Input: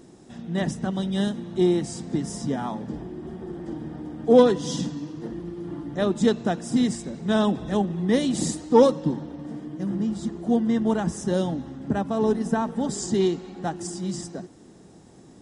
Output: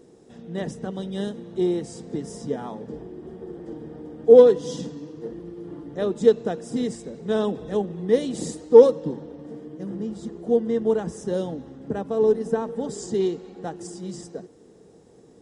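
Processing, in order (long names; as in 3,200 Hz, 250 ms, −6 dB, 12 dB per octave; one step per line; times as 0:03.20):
parametric band 460 Hz +14.5 dB 0.4 octaves
level −6 dB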